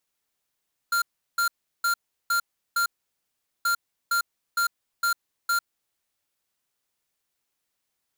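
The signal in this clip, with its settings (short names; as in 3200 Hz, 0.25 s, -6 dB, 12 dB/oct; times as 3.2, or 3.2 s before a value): beep pattern square 1390 Hz, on 0.10 s, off 0.36 s, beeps 5, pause 0.79 s, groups 2, -23 dBFS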